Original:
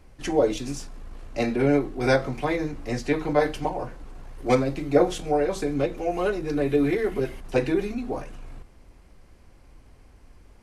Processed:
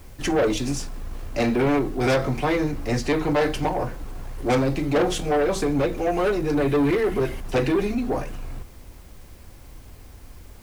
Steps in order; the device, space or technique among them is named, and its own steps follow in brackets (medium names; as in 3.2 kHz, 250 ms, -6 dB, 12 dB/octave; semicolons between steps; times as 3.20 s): open-reel tape (saturation -23 dBFS, distortion -8 dB; peaking EQ 89 Hz +4 dB 1.02 oct; white noise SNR 33 dB); trim +6.5 dB